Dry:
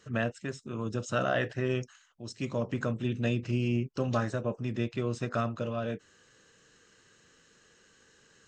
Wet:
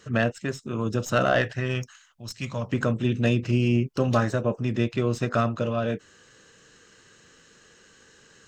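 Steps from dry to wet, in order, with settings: tracing distortion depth 0.025 ms; 1.41–2.71 bell 360 Hz -7.5 dB -> -14 dB 1.5 oct; gain +7 dB

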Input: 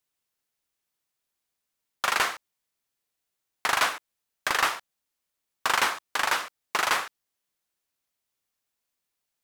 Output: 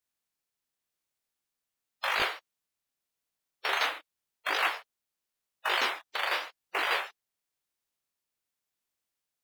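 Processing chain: bin magnitudes rounded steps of 30 dB; detuned doubles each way 31 cents

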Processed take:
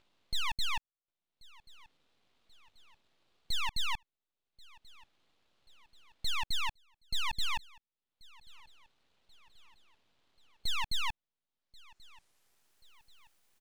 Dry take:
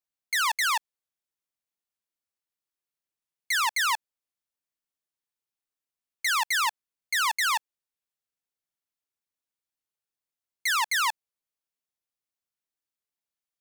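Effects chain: Bessel high-pass 490 Hz, order 6; high shelf 2100 Hz -9 dB; in parallel at -2 dB: limiter -31 dBFS, peak gain reduction 11 dB; on the sum: upward compressor, threshold -40 dBFS; low-pass sweep 2000 Hz -> 11000 Hz, 11.47–12.92; full-wave rectifier; on a send: feedback echo 1.084 s, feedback 51%, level -24 dB; on the sum: gain -7.5 dB

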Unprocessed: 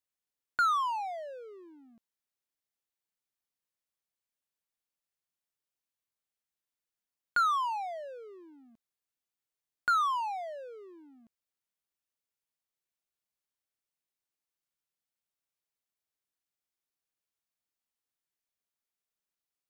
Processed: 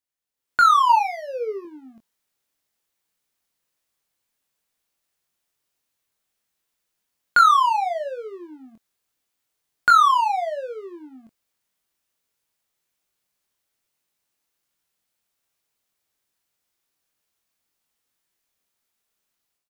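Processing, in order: 0.89–1.65 ripple EQ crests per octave 0.84, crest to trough 16 dB; AGC gain up to 12 dB; doubler 23 ms -6 dB

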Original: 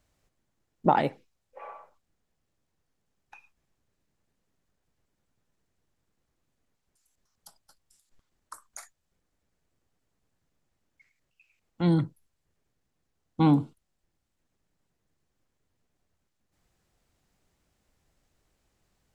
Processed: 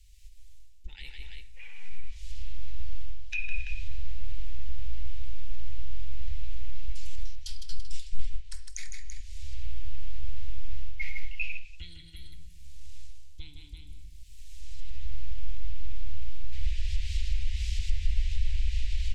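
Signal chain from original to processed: recorder AGC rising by 20 dB/s; tapped delay 0.157/0.335 s -10/-17 dB; reverb RT60 1.1 s, pre-delay 6 ms, DRR 10.5 dB; reverse; compressor 6:1, threshold -36 dBFS, peak gain reduction 23 dB; reverse; inverse Chebyshev band-stop 120–1300 Hz, stop band 40 dB; treble ducked by the level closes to 2700 Hz, closed at -39.5 dBFS; low shelf 390 Hz +11.5 dB; gain +10.5 dB

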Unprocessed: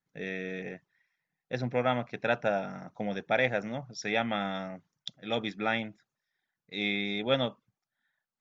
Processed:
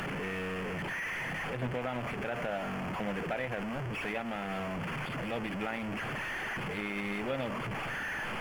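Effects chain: delta modulation 16 kbps, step -26 dBFS; crossover distortion -46 dBFS; limiter -22 dBFS, peak gain reduction 9 dB; gain -2 dB

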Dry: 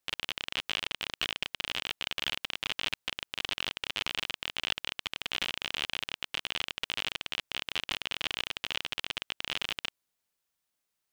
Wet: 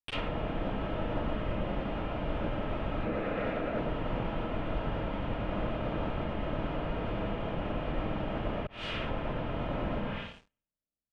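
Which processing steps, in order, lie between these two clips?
Wiener smoothing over 41 samples; notch comb 380 Hz; digital reverb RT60 0.78 s, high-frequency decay 0.8×, pre-delay 35 ms, DRR -9.5 dB; limiter -17.5 dBFS, peak gain reduction 6.5 dB; 3.05–3.79 speaker cabinet 210–3800 Hz, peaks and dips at 480 Hz +5 dB, 950 Hz -10 dB, 3100 Hz -9 dB; sample leveller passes 5; echo 0.116 s -7 dB; 8.67–9.11 fade in; treble ducked by the level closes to 920 Hz, closed at -17.5 dBFS; tilt -3 dB/oct; gain -7 dB

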